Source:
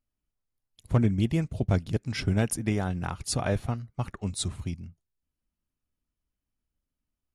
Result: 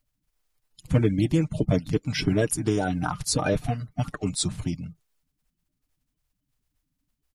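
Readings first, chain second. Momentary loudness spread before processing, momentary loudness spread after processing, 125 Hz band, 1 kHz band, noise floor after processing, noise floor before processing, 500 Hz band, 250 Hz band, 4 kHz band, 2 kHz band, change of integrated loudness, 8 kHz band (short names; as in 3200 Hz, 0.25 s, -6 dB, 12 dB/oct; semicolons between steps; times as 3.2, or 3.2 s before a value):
10 LU, 8 LU, +1.5 dB, +4.0 dB, -80 dBFS, under -85 dBFS, +5.5 dB, +3.5 dB, +5.0 dB, +4.0 dB, +3.0 dB, +4.5 dB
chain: bin magnitudes rounded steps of 30 dB; comb 6.6 ms, depth 49%; in parallel at +1 dB: compressor, threshold -32 dBFS, peak gain reduction 13.5 dB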